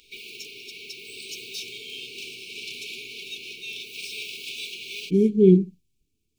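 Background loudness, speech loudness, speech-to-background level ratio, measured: -35.5 LUFS, -19.0 LUFS, 16.5 dB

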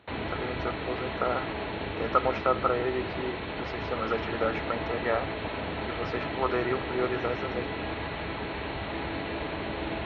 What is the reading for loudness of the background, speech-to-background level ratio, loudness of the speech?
-34.0 LUFS, 2.0 dB, -32.0 LUFS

